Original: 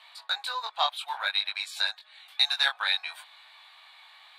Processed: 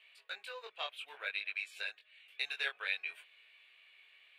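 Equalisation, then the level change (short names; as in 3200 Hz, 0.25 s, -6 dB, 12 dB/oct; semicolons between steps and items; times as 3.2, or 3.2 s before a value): EQ curve 290 Hz 0 dB, 430 Hz +5 dB, 840 Hz -29 dB, 2700 Hz -4 dB, 3900 Hz -26 dB; dynamic EQ 990 Hz, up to +5 dB, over -58 dBFS, Q 0.72; tone controls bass +6 dB, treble +10 dB; +1.0 dB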